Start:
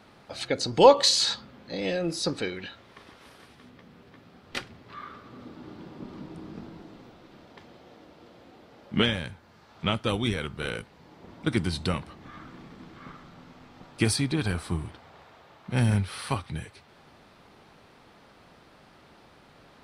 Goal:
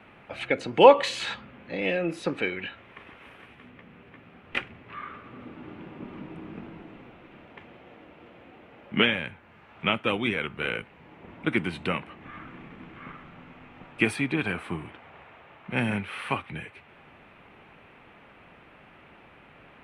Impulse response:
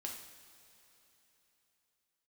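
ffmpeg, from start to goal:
-filter_complex "[0:a]highshelf=frequency=3500:width_type=q:width=3:gain=-11,acrossover=split=160|2000[link_01][link_02][link_03];[link_01]acompressor=threshold=-49dB:ratio=6[link_04];[link_04][link_02][link_03]amix=inputs=3:normalize=0,volume=1dB"

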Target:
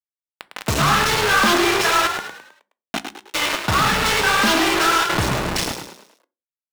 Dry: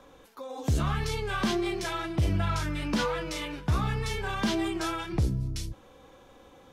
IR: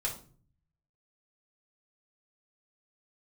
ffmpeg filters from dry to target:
-filter_complex "[0:a]adynamicequalizer=threshold=0.00355:dfrequency=1400:dqfactor=2.8:tfrequency=1400:tqfactor=2.8:attack=5:release=100:ratio=0.375:range=2:mode=boostabove:tftype=bell,acontrast=33,flanger=delay=2.8:depth=7.2:regen=-36:speed=2:shape=sinusoidal,asplit=3[link_01][link_02][link_03];[link_01]afade=type=out:start_time=2.07:duration=0.02[link_04];[link_02]asplit=3[link_05][link_06][link_07];[link_05]bandpass=frequency=270:width_type=q:width=8,volume=0dB[link_08];[link_06]bandpass=frequency=2290:width_type=q:width=8,volume=-6dB[link_09];[link_07]bandpass=frequency=3010:width_type=q:width=8,volume=-9dB[link_10];[link_08][link_09][link_10]amix=inputs=3:normalize=0,afade=type=in:start_time=2.07:duration=0.02,afade=type=out:start_time=3.33:duration=0.02[link_11];[link_03]afade=type=in:start_time=3.33:duration=0.02[link_12];[link_04][link_11][link_12]amix=inputs=3:normalize=0,acrusher=bits=4:mix=0:aa=0.000001,asplit=2[link_13][link_14];[link_14]highpass=frequency=720:poles=1,volume=20dB,asoftclip=type=tanh:threshold=-6.5dB[link_15];[link_13][link_15]amix=inputs=2:normalize=0,lowpass=frequency=4100:poles=1,volume=-6dB,asplit=6[link_16][link_17][link_18][link_19][link_20][link_21];[link_17]adelay=105,afreqshift=49,volume=-7dB[link_22];[link_18]adelay=210,afreqshift=98,volume=-14.5dB[link_23];[link_19]adelay=315,afreqshift=147,volume=-22.1dB[link_24];[link_20]adelay=420,afreqshift=196,volume=-29.6dB[link_25];[link_21]adelay=525,afreqshift=245,volume=-37.1dB[link_26];[link_16][link_22][link_23][link_24][link_25][link_26]amix=inputs=6:normalize=0,asplit=2[link_27][link_28];[1:a]atrim=start_sample=2205,afade=type=out:start_time=0.36:duration=0.01,atrim=end_sample=16317,asetrate=70560,aresample=44100[link_29];[link_28][link_29]afir=irnorm=-1:irlink=0,volume=-10dB[link_30];[link_27][link_30]amix=inputs=2:normalize=0"

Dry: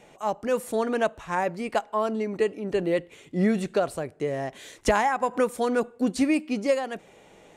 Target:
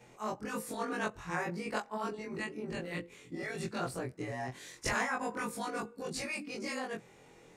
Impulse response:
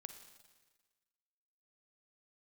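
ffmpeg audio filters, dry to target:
-af "afftfilt=real='re':imag='-im':win_size=2048:overlap=0.75,equalizer=frequency=125:width_type=o:width=0.33:gain=6,equalizer=frequency=630:width_type=o:width=0.33:gain=-9,equalizer=frequency=3150:width_type=o:width=0.33:gain=-5,equalizer=frequency=5000:width_type=o:width=0.33:gain=4,afftfilt=real='re*lt(hypot(re,im),0.178)':imag='im*lt(hypot(re,im),0.178)':win_size=1024:overlap=0.75"

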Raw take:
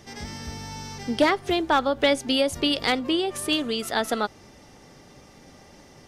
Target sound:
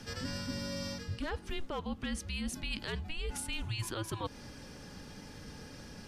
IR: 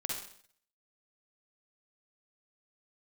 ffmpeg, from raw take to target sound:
-af "alimiter=limit=-18dB:level=0:latency=1:release=112,areverse,acompressor=threshold=-36dB:ratio=6,areverse,afreqshift=-330,volume=1.5dB"

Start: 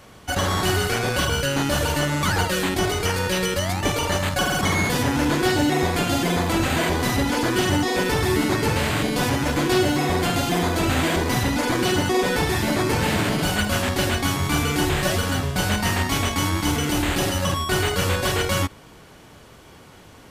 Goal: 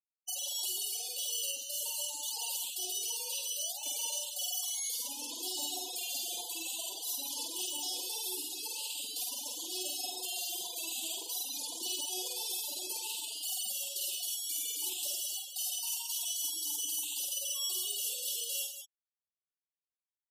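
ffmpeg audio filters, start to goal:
ffmpeg -i in.wav -filter_complex "[0:a]aderivative,alimiter=level_in=2.5dB:limit=-24dB:level=0:latency=1:release=32,volume=-2.5dB,asuperstop=centerf=1600:order=8:qfactor=1,afftfilt=real='re*gte(hypot(re,im),0.0141)':imag='im*gte(hypot(re,im),0.0141)':win_size=1024:overlap=0.75,asplit=2[link_01][link_02];[link_02]aecho=0:1:49|186:0.631|0.376[link_03];[link_01][link_03]amix=inputs=2:normalize=0,volume=2dB" out.wav

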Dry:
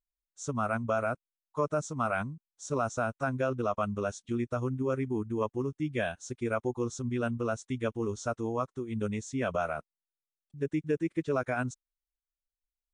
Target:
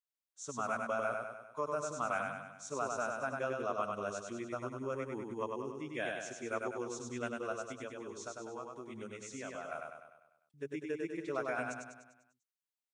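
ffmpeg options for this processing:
ffmpeg -i in.wav -filter_complex "[0:a]highpass=frequency=580:poles=1,asettb=1/sr,asplit=3[link_01][link_02][link_03];[link_01]atrim=end=7.524[link_04];[link_02]atrim=start=7.52:end=9.72,asetpts=PTS-STARTPTS,afade=type=in:duration=0.004:curve=qsin,afade=type=out:start_time=2.196:duration=0.004:curve=qsin,acompressor=threshold=-39dB:ratio=3[link_05];[link_03]atrim=start=9.716[link_06];[link_04][link_05]acrossfade=duration=0.004:curve1=hsin:curve2=qsin[link_07];[link_07][link_06]acrossfade=duration=0.004:curve1=qsin:curve2=hsin,aecho=1:1:99|198|297|396|495|594|693:0.668|0.354|0.188|0.0995|0.0527|0.0279|0.0148,volume=-4.5dB" out.wav

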